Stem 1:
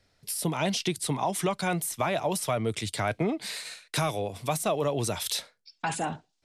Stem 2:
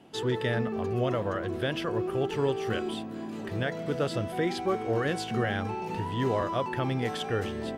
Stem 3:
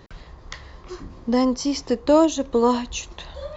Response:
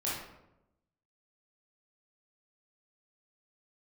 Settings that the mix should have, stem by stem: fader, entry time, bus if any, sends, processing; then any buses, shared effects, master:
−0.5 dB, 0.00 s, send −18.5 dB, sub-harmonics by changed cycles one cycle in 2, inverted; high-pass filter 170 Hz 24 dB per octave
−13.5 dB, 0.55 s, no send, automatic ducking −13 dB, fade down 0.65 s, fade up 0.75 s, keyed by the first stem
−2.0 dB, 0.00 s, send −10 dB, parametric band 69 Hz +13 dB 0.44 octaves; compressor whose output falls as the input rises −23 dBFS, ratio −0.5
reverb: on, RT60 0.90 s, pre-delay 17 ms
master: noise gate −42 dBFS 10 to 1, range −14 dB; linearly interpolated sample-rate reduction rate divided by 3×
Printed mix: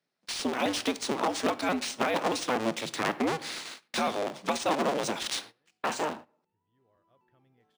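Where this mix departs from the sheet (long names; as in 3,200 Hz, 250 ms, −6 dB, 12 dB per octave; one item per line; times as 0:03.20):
stem 2 −13.5 dB → −23.5 dB
stem 3: muted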